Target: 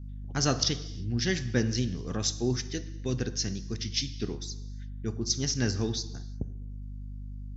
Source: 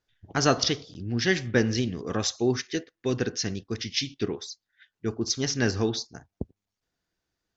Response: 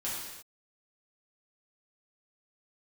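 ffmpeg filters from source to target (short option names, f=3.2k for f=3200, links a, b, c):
-filter_complex "[0:a]aeval=exprs='val(0)+0.0112*(sin(2*PI*50*n/s)+sin(2*PI*2*50*n/s)/2+sin(2*PI*3*50*n/s)/3+sin(2*PI*4*50*n/s)/4+sin(2*PI*5*50*n/s)/5)':c=same,bass=f=250:g=8,treble=f=4k:g=9,asplit=2[a][b];[1:a]atrim=start_sample=2205[c];[b][c]afir=irnorm=-1:irlink=0,volume=-16dB[d];[a][d]amix=inputs=2:normalize=0,volume=-8.5dB"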